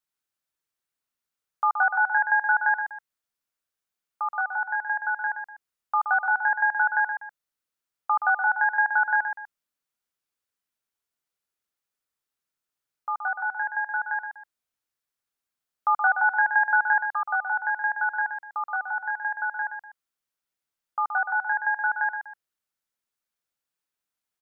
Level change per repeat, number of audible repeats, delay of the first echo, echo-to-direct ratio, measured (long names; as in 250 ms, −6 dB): −9.5 dB, 2, 123 ms, −7.0 dB